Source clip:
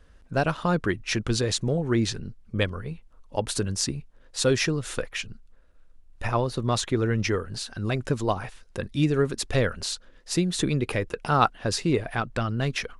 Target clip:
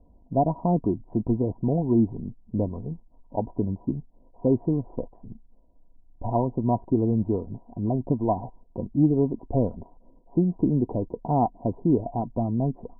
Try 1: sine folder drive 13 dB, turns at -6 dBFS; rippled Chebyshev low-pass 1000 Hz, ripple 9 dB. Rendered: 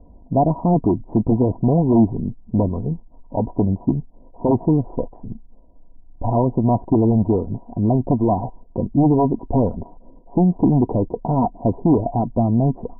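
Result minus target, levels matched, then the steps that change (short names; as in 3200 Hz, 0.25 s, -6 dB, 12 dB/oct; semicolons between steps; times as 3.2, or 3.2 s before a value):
sine folder: distortion +17 dB
change: sine folder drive 3 dB, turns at -6 dBFS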